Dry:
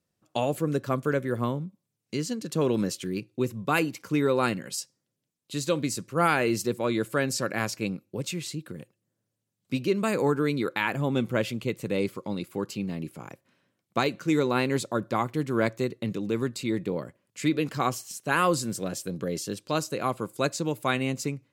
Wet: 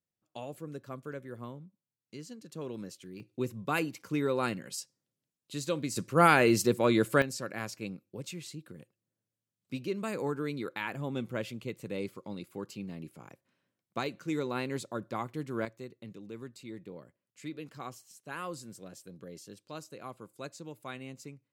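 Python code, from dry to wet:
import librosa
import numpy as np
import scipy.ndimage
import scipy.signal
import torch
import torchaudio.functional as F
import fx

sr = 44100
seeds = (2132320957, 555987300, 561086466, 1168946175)

y = fx.gain(x, sr, db=fx.steps((0.0, -15.0), (3.2, -6.0), (5.96, 1.5), (7.22, -9.0), (15.65, -16.0)))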